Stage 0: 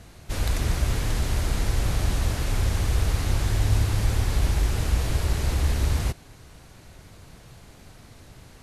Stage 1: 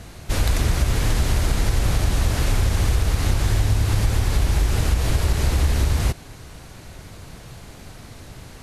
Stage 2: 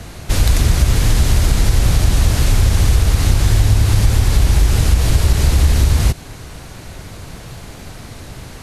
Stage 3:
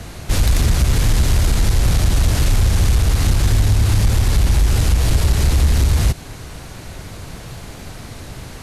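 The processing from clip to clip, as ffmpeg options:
ffmpeg -i in.wav -af "acompressor=threshold=-22dB:ratio=6,volume=7.5dB" out.wav
ffmpeg -i in.wav -filter_complex "[0:a]acrossover=split=240|3000[link_01][link_02][link_03];[link_02]acompressor=threshold=-36dB:ratio=2[link_04];[link_01][link_04][link_03]amix=inputs=3:normalize=0,volume=7dB" out.wav
ffmpeg -i in.wav -af "asoftclip=type=tanh:threshold=-6.5dB" out.wav

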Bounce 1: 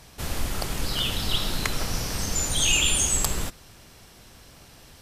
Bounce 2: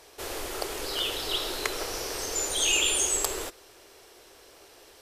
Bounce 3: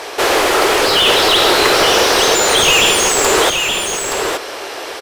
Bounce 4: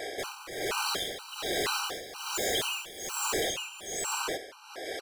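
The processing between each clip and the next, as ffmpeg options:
ffmpeg -i in.wav -af "lowshelf=frequency=270:width_type=q:width=3:gain=-12.5,volume=-2.5dB" out.wav
ffmpeg -i in.wav -filter_complex "[0:a]asplit=2[link_01][link_02];[link_02]highpass=frequency=720:poles=1,volume=30dB,asoftclip=type=tanh:threshold=-6.5dB[link_03];[link_01][link_03]amix=inputs=2:normalize=0,lowpass=frequency=1900:poles=1,volume=-6dB,aecho=1:1:873:0.531,volume=7.5dB" out.wav
ffmpeg -i in.wav -af "asoftclip=type=hard:threshold=-18dB,tremolo=f=1.2:d=0.84,afftfilt=real='re*gt(sin(2*PI*2.1*pts/sr)*(1-2*mod(floor(b*sr/1024/780),2)),0)':imag='im*gt(sin(2*PI*2.1*pts/sr)*(1-2*mod(floor(b*sr/1024/780),2)),0)':win_size=1024:overlap=0.75,volume=-7dB" out.wav

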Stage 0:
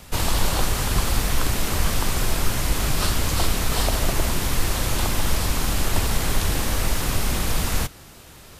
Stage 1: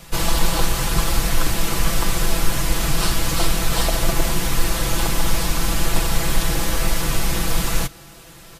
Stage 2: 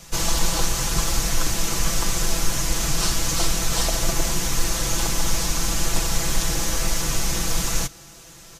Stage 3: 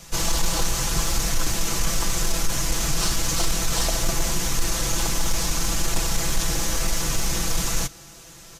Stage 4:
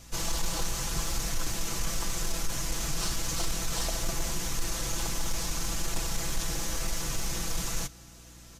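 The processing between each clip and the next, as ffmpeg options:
ffmpeg -i in.wav -af "aecho=1:1:6:0.84" out.wav
ffmpeg -i in.wav -af "equalizer=frequency=6300:width=1.8:gain=10,volume=-4dB" out.wav
ffmpeg -i in.wav -af "asoftclip=type=tanh:threshold=-11dB" out.wav
ffmpeg -i in.wav -af "aeval=exprs='val(0)+0.00631*(sin(2*PI*60*n/s)+sin(2*PI*2*60*n/s)/2+sin(2*PI*3*60*n/s)/3+sin(2*PI*4*60*n/s)/4+sin(2*PI*5*60*n/s)/5)':channel_layout=same,volume=-8dB" out.wav

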